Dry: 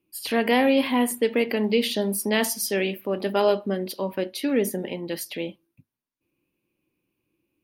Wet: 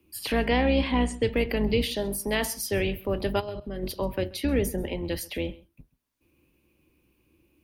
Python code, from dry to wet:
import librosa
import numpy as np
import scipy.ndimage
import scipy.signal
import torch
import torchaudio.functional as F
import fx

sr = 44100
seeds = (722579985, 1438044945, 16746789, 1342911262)

y = fx.octave_divider(x, sr, octaves=2, level_db=-1.0)
y = fx.steep_lowpass(y, sr, hz=7900.0, slope=36, at=(0.46, 1.31), fade=0.02)
y = fx.low_shelf(y, sr, hz=210.0, db=-10.5, at=(1.85, 2.72))
y = fx.level_steps(y, sr, step_db=17, at=(3.39, 3.82), fade=0.02)
y = y + 10.0 ** (-23.0 / 20.0) * np.pad(y, (int(132 * sr / 1000.0), 0))[:len(y)]
y = fx.band_squash(y, sr, depth_pct=40)
y = y * librosa.db_to_amplitude(-3.0)